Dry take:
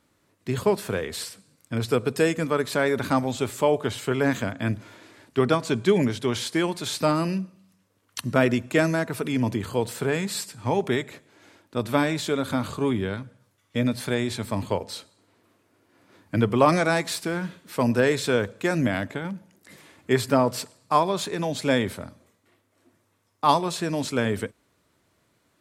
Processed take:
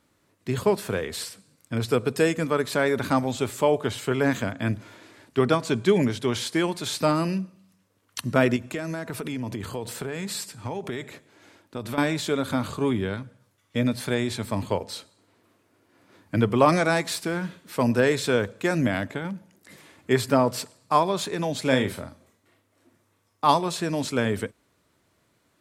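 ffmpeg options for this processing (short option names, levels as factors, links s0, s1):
-filter_complex "[0:a]asettb=1/sr,asplit=3[s0][s1][s2];[s0]atrim=end=8.564[s3];[s1]atrim=start=8.56:end=11.98,asetpts=PTS-STARTPTS,afade=t=in:d=0.004:c=qsin,afade=t=out:st=3.416:d=0.004:c=qsin,acompressor=threshold=0.0447:ratio=6:attack=3.2:release=140:knee=1:detection=peak[s4];[s2]atrim=start=11.976[s5];[s3][s4]acrossfade=d=0.004:c1=hsin:c2=qsin[s6];[s6][s5]acrossfade=d=0.004:c1=qsin:c2=hsin,asettb=1/sr,asplit=3[s7][s8][s9];[s7]atrim=end=21.614[s10];[s8]atrim=start=21.61:end=23.46,asetpts=PTS-STARTPTS,afade=t=in:d=0.004:c=qsin,afade=t=out:st=1.846:d=0.004:c=qsin,asplit=2[s11][s12];[s12]adelay=38,volume=0.398[s13];[s11][s13]amix=inputs=2:normalize=0,atrim=end_sample=81585[s14];[s9]atrim=start=23.456[s15];[s10][s14]acrossfade=d=0.004:c1=hsin:c2=qsin[s16];[s16][s15]acrossfade=d=0.004:c1=qsin:c2=hsin"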